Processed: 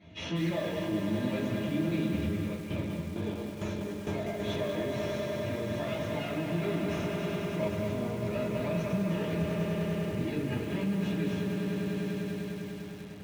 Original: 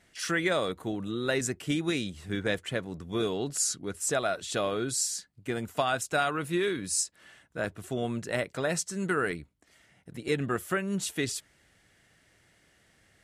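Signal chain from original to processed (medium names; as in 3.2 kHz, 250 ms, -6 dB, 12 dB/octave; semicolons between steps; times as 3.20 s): comb filter that takes the minimum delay 0.31 ms; compression 12:1, threshold -39 dBFS, peak gain reduction 16 dB; distance through air 260 m; comb of notches 380 Hz; echo with a slow build-up 100 ms, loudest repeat 5, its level -11 dB; peak limiter -40 dBFS, peak gain reduction 11 dB; high-pass 63 Hz 24 dB/octave; reverberation RT60 0.35 s, pre-delay 3 ms, DRR -8.5 dB; 2.25–4.40 s: tremolo saw down 2.2 Hz, depth 75%; treble shelf 11 kHz -11 dB; bit-crushed delay 195 ms, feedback 35%, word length 8-bit, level -6.5 dB; trim +2 dB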